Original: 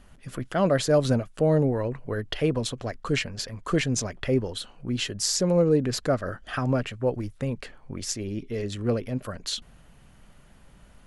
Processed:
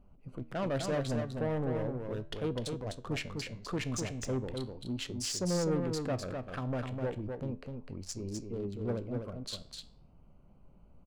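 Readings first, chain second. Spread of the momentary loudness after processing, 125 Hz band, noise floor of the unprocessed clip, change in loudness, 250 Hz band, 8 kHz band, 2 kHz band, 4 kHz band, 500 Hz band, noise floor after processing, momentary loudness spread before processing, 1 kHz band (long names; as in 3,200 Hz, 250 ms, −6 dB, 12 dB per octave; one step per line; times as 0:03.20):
9 LU, −8.5 dB, −54 dBFS, −9.5 dB, −8.5 dB, −10.0 dB, −10.0 dB, −9.5 dB, −10.0 dB, −59 dBFS, 12 LU, −8.5 dB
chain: adaptive Wiener filter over 25 samples
soft clipping −22 dBFS, distortion −10 dB
flanger 0.38 Hz, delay 9.7 ms, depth 8.6 ms, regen +81%
on a send: single-tap delay 253 ms −5 dB
on the sum: level −2 dB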